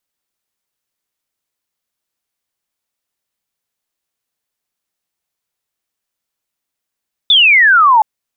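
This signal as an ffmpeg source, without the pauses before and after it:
-f lavfi -i "aevalsrc='0.562*clip(t/0.002,0,1)*clip((0.72-t)/0.002,0,1)*sin(2*PI*3600*0.72/log(840/3600)*(exp(log(840/3600)*t/0.72)-1))':d=0.72:s=44100"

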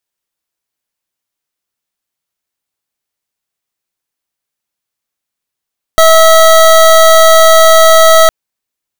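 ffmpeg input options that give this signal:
-f lavfi -i "aevalsrc='0.631*(2*lt(mod(648*t,1),0.25)-1)':d=2.31:s=44100"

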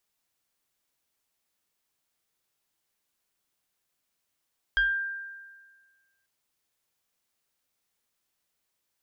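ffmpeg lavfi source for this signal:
-f lavfi -i "aevalsrc='0.112*pow(10,-3*t/1.55)*sin(2*PI*1590*t+0.65*pow(10,-3*t/0.38)*sin(2*PI*1.03*1590*t))':d=1.49:s=44100"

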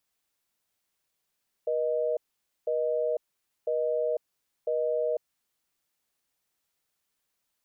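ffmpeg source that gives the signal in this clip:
-f lavfi -i "aevalsrc='0.0422*(sin(2*PI*480*t)+sin(2*PI*620*t))*clip(min(mod(t,1),0.5-mod(t,1))/0.005,0,1)':d=3.9:s=44100"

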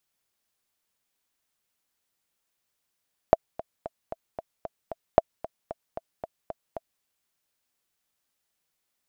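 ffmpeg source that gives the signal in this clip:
-f lavfi -i "aevalsrc='pow(10,(-2-18.5*gte(mod(t,7*60/227),60/227))/20)*sin(2*PI*659*mod(t,60/227))*exp(-6.91*mod(t,60/227)/0.03)':d=3.7:s=44100"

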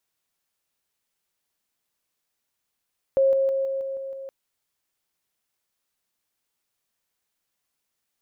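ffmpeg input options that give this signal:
-f lavfi -i "aevalsrc='pow(10,(-15.5-3*floor(t/0.16))/20)*sin(2*PI*540*t)':d=1.12:s=44100"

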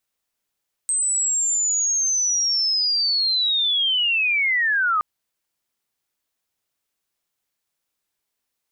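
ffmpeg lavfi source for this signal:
-f lavfi -i "aevalsrc='pow(10,(-18.5+1.5*t/4.12)/20)*sin(2*PI*(8300*t-7100*t*t/(2*4.12)))':d=4.12:s=44100"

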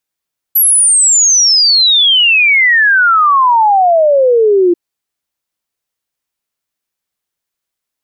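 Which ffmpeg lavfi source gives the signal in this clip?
-f lavfi -i "aevalsrc='0.531*clip(min(t,4.19-t)/0.01,0,1)*sin(2*PI*12000*4.19/log(340/12000)*(exp(log(340/12000)*t/4.19)-1))':d=4.19:s=44100"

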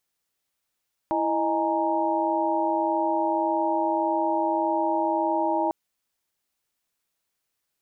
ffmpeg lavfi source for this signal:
-f lavfi -i "aevalsrc='0.0447*(sin(2*PI*329.63*t)+sin(2*PI*622.25*t)+sin(2*PI*830.61*t)+sin(2*PI*932.33*t))':d=4.6:s=44100"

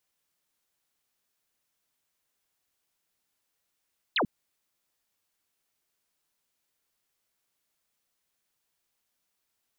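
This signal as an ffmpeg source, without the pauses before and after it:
-f lavfi -i "aevalsrc='0.075*clip(t/0.002,0,1)*clip((0.09-t)/0.002,0,1)*sin(2*PI*4500*0.09/log(160/4500)*(exp(log(160/4500)*t/0.09)-1))':d=0.09:s=44100"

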